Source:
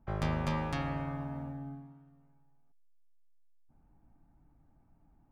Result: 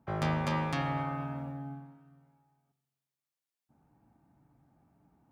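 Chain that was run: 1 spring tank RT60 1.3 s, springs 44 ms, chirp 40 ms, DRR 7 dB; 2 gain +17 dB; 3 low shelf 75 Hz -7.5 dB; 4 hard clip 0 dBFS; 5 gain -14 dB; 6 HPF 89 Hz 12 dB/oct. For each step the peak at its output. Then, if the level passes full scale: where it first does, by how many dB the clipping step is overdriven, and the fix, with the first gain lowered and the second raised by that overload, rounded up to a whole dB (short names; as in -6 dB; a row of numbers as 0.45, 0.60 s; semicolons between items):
-20.0, -3.0, -4.5, -4.5, -18.5, -17.5 dBFS; no overload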